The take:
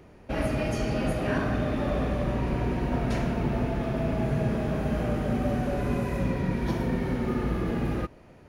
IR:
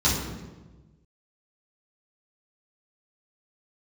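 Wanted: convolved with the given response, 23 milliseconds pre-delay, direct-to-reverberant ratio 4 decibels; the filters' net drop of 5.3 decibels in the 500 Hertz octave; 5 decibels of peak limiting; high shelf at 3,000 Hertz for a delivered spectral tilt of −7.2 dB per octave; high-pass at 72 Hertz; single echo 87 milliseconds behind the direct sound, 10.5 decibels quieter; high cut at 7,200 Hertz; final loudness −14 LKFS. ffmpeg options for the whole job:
-filter_complex "[0:a]highpass=72,lowpass=7200,equalizer=frequency=500:width_type=o:gain=-7.5,highshelf=frequency=3000:gain=8,alimiter=limit=-21.5dB:level=0:latency=1,aecho=1:1:87:0.299,asplit=2[link_01][link_02];[1:a]atrim=start_sample=2205,adelay=23[link_03];[link_02][link_03]afir=irnorm=-1:irlink=0,volume=-18.5dB[link_04];[link_01][link_04]amix=inputs=2:normalize=0,volume=11dB"

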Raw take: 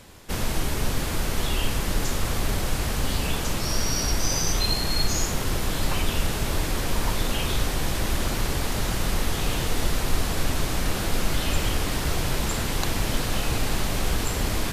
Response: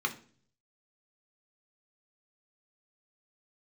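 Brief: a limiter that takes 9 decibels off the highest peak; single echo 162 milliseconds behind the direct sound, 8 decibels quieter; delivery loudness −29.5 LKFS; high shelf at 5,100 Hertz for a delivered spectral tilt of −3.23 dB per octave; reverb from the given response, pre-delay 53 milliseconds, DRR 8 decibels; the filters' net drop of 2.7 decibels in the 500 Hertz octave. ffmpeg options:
-filter_complex "[0:a]equalizer=frequency=500:width_type=o:gain=-3.5,highshelf=frequency=5100:gain=3.5,alimiter=limit=-17dB:level=0:latency=1,aecho=1:1:162:0.398,asplit=2[link_01][link_02];[1:a]atrim=start_sample=2205,adelay=53[link_03];[link_02][link_03]afir=irnorm=-1:irlink=0,volume=-15dB[link_04];[link_01][link_04]amix=inputs=2:normalize=0,volume=-2.5dB"

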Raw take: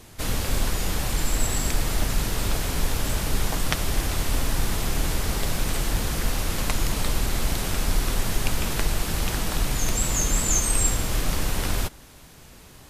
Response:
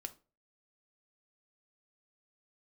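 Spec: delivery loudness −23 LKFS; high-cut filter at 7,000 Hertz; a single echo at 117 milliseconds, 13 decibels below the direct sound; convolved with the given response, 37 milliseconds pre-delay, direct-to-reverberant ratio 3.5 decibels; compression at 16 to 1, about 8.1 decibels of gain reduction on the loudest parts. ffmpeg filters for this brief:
-filter_complex "[0:a]lowpass=7000,acompressor=threshold=-25dB:ratio=16,aecho=1:1:117:0.224,asplit=2[link_01][link_02];[1:a]atrim=start_sample=2205,adelay=37[link_03];[link_02][link_03]afir=irnorm=-1:irlink=0,volume=0dB[link_04];[link_01][link_04]amix=inputs=2:normalize=0,volume=8.5dB"

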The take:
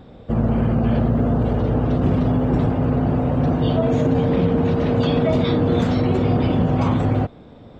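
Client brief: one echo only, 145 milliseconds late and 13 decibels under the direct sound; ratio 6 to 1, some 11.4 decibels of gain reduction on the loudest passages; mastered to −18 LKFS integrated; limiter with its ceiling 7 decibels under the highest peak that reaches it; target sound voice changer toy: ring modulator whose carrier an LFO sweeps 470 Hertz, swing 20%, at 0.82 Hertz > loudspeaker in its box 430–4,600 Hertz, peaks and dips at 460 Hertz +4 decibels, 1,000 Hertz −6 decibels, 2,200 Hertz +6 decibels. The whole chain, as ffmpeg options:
ffmpeg -i in.wav -af "acompressor=threshold=-27dB:ratio=6,alimiter=level_in=1dB:limit=-24dB:level=0:latency=1,volume=-1dB,aecho=1:1:145:0.224,aeval=exprs='val(0)*sin(2*PI*470*n/s+470*0.2/0.82*sin(2*PI*0.82*n/s))':channel_layout=same,highpass=430,equalizer=frequency=460:width_type=q:width=4:gain=4,equalizer=frequency=1000:width_type=q:width=4:gain=-6,equalizer=frequency=2200:width_type=q:width=4:gain=6,lowpass=frequency=4600:width=0.5412,lowpass=frequency=4600:width=1.3066,volume=20.5dB" out.wav

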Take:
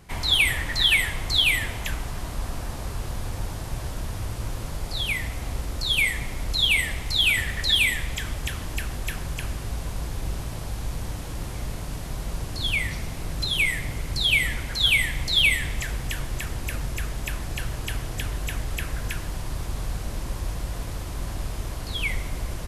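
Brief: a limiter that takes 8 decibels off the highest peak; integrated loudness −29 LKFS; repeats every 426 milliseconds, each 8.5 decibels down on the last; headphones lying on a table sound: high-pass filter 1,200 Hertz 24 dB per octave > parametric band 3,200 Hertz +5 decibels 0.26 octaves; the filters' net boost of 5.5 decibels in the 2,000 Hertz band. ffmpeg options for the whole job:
ffmpeg -i in.wav -af "equalizer=frequency=2000:width_type=o:gain=6,alimiter=limit=-13.5dB:level=0:latency=1,highpass=frequency=1200:width=0.5412,highpass=frequency=1200:width=1.3066,equalizer=frequency=3200:width_type=o:width=0.26:gain=5,aecho=1:1:426|852|1278|1704:0.376|0.143|0.0543|0.0206,volume=-7dB" out.wav

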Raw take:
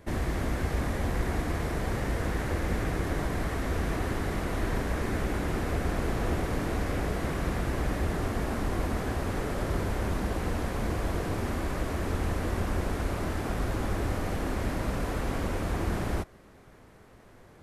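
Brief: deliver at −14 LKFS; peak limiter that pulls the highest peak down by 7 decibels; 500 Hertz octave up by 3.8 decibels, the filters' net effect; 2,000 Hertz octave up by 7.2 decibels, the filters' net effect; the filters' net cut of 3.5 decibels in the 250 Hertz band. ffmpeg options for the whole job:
ffmpeg -i in.wav -af "equalizer=frequency=250:width_type=o:gain=-7.5,equalizer=frequency=500:width_type=o:gain=6.5,equalizer=frequency=2000:width_type=o:gain=8.5,volume=18dB,alimiter=limit=-4dB:level=0:latency=1" out.wav

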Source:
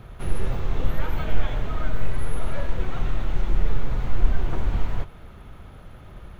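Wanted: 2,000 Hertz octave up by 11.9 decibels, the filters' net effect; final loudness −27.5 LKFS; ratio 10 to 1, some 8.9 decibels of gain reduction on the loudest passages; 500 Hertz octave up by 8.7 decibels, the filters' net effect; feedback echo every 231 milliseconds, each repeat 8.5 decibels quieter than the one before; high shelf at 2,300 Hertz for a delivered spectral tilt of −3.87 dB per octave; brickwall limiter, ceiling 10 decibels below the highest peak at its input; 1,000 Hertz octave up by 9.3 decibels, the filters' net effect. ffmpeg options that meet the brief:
ffmpeg -i in.wav -af "equalizer=frequency=500:width_type=o:gain=8.5,equalizer=frequency=1000:width_type=o:gain=5,equalizer=frequency=2000:width_type=o:gain=8.5,highshelf=frequency=2300:gain=9,acompressor=threshold=-17dB:ratio=10,alimiter=limit=-21.5dB:level=0:latency=1,aecho=1:1:231|462|693|924:0.376|0.143|0.0543|0.0206,volume=7.5dB" out.wav

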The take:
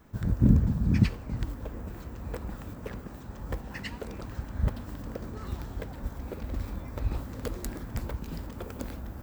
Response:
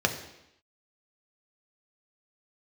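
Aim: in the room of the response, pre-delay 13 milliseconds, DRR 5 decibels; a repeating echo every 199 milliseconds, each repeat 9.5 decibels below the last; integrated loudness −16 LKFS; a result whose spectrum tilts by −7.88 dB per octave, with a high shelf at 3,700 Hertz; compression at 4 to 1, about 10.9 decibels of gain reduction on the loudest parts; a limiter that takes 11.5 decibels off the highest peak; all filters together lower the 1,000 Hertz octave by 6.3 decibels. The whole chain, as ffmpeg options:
-filter_complex "[0:a]equalizer=frequency=1000:width_type=o:gain=-8,highshelf=frequency=3700:gain=-4,acompressor=threshold=-28dB:ratio=4,alimiter=level_in=6dB:limit=-24dB:level=0:latency=1,volume=-6dB,aecho=1:1:199|398|597|796:0.335|0.111|0.0365|0.012,asplit=2[link_01][link_02];[1:a]atrim=start_sample=2205,adelay=13[link_03];[link_02][link_03]afir=irnorm=-1:irlink=0,volume=-17dB[link_04];[link_01][link_04]amix=inputs=2:normalize=0,volume=23dB"

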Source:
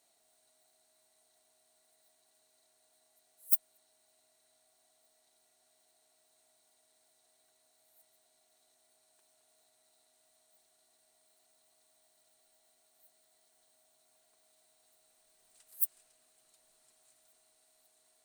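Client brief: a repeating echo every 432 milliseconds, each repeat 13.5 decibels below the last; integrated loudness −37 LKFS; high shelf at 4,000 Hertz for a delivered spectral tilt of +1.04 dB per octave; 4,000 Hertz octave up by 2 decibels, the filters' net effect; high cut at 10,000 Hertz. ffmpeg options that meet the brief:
ffmpeg -i in.wav -af "lowpass=10000,highshelf=frequency=4000:gain=-6.5,equalizer=frequency=4000:width_type=o:gain=6,aecho=1:1:432|864:0.211|0.0444,volume=26.5dB" out.wav

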